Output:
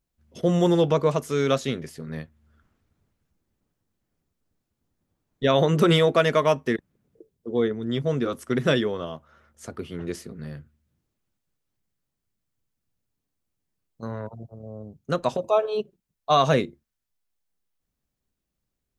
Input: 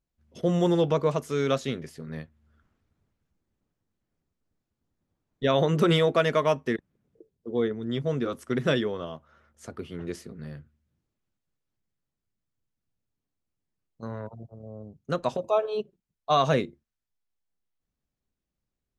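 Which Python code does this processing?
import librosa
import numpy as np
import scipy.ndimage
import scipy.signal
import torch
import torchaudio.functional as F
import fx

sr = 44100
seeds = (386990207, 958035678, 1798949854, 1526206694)

y = fx.high_shelf(x, sr, hz=7900.0, db=4.5)
y = F.gain(torch.from_numpy(y), 3.0).numpy()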